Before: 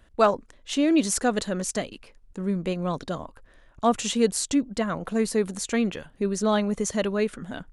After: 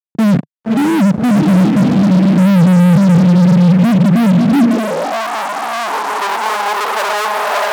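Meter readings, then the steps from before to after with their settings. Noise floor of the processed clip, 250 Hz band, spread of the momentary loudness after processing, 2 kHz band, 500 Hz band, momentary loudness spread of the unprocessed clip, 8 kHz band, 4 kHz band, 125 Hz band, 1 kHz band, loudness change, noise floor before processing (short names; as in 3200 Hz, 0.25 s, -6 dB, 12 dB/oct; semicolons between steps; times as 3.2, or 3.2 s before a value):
-37 dBFS, +16.5 dB, 9 LU, +14.5 dB, +6.0 dB, 11 LU, n/a, +9.0 dB, +24.0 dB, +14.0 dB, +14.0 dB, -57 dBFS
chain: HPF 51 Hz 24 dB/oct; diffused feedback echo 0.605 s, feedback 48%, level -7 dB; low-pass sweep 170 Hz -> 640 Hz, 4.79–7.47; fuzz box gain 47 dB, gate -49 dBFS; high-pass sweep 150 Hz -> 910 Hz, 4.45–5.24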